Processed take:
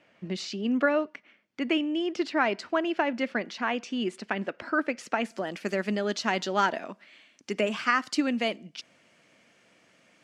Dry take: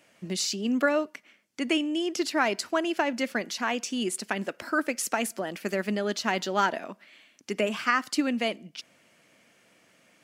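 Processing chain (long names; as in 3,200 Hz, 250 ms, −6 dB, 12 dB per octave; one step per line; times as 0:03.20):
low-pass filter 3,200 Hz 12 dB per octave, from 0:05.31 7,300 Hz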